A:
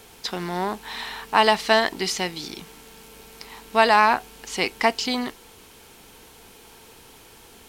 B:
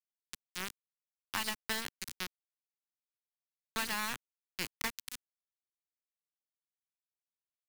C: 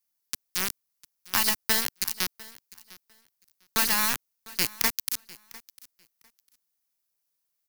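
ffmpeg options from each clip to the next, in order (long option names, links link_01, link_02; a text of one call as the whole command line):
ffmpeg -i in.wav -filter_complex "[0:a]aeval=exprs='val(0)*gte(abs(val(0)),0.168)':channel_layout=same,acrossover=split=260|1500|7500[link_01][link_02][link_03][link_04];[link_01]acompressor=threshold=-40dB:ratio=4[link_05];[link_02]acompressor=threshold=-27dB:ratio=4[link_06];[link_03]acompressor=threshold=-31dB:ratio=4[link_07];[link_04]acompressor=threshold=-34dB:ratio=4[link_08];[link_05][link_06][link_07][link_08]amix=inputs=4:normalize=0,equalizer=frequency=640:width_type=o:width=1.3:gain=-13.5,volume=-5.5dB" out.wav
ffmpeg -i in.wav -af "aexciter=amount=2:drive=5.4:freq=4600,aecho=1:1:701|1402:0.0891|0.016,volume=8dB" out.wav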